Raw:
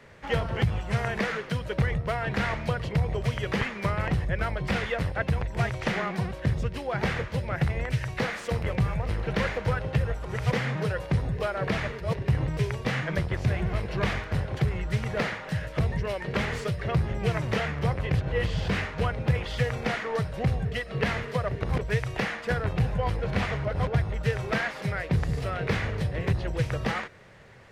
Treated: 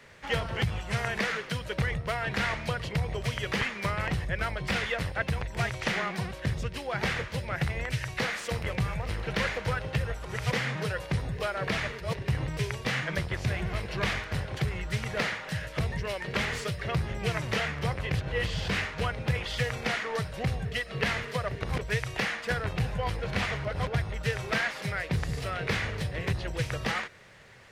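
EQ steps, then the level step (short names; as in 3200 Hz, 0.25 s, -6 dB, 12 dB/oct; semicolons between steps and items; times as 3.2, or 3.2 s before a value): tilt shelf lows -4.5 dB, about 1500 Hz; 0.0 dB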